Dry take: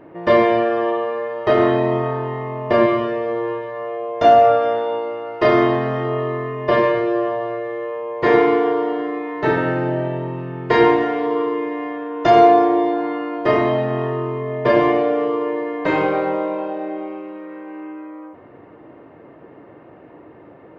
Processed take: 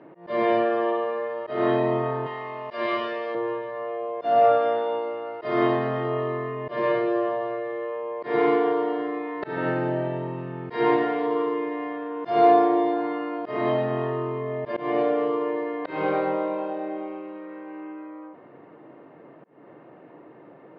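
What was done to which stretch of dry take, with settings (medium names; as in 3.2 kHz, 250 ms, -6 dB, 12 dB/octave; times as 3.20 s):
2.26–3.35 s: tilt EQ +4 dB/octave
whole clip: Chebyshev band-pass 140–4600 Hz, order 3; slow attack 233 ms; trim -4 dB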